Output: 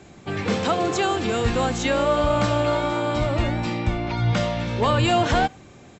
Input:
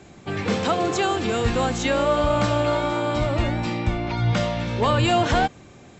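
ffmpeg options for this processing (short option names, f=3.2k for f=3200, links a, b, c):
-filter_complex "[0:a]asplit=2[a][b];[b]adelay=90,highpass=300,lowpass=3.4k,asoftclip=type=hard:threshold=-19dB,volume=-28dB[c];[a][c]amix=inputs=2:normalize=0"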